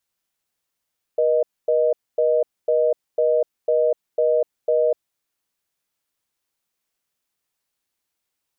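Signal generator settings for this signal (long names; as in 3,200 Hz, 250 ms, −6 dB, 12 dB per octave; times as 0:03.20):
call progress tone reorder tone, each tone −18 dBFS 3.83 s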